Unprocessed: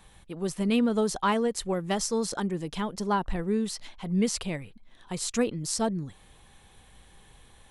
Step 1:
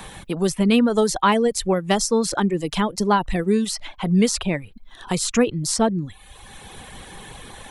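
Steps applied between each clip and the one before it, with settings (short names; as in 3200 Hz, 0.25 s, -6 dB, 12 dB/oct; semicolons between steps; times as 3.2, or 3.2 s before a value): reverb removal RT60 0.69 s; three-band squash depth 40%; gain +9 dB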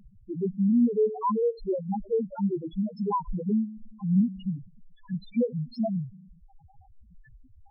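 treble ducked by the level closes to 1800 Hz, closed at -13.5 dBFS; spring tank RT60 1.7 s, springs 37 ms, chirp 80 ms, DRR 13.5 dB; loudest bins only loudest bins 1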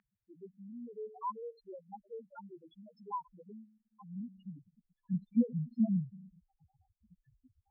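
band-pass sweep 1800 Hz -> 210 Hz, 3.81–5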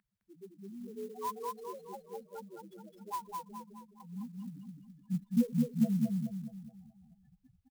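feedback echo 0.211 s, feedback 45%, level -3 dB; clock jitter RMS 0.034 ms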